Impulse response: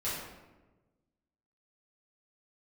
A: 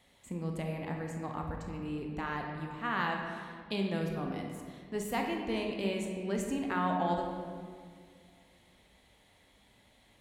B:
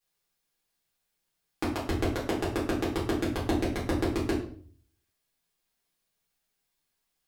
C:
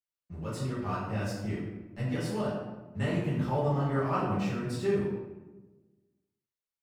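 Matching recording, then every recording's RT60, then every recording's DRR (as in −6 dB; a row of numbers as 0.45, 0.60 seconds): C; 2.0, 0.50, 1.2 seconds; 1.5, −8.5, −11.0 decibels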